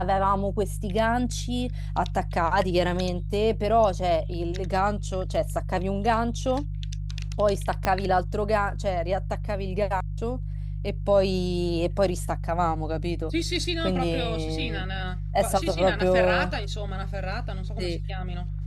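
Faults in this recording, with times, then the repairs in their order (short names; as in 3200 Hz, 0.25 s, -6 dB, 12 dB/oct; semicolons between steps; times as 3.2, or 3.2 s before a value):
hum 50 Hz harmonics 3 -31 dBFS
7.85 pop -9 dBFS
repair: de-click; de-hum 50 Hz, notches 3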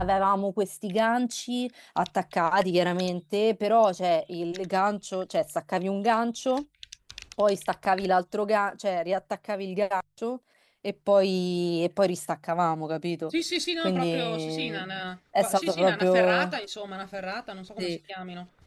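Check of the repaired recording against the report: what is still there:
7.85 pop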